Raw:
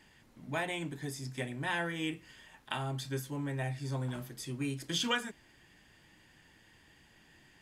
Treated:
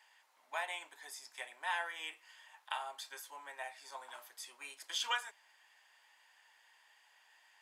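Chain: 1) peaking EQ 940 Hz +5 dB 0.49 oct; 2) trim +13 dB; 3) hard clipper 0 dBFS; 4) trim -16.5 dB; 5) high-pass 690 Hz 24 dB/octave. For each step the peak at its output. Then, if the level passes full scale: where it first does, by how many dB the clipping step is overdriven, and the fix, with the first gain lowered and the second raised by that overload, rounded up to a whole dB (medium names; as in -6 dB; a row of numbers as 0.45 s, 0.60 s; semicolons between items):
-15.5 dBFS, -2.5 dBFS, -2.5 dBFS, -19.0 dBFS, -21.0 dBFS; nothing clips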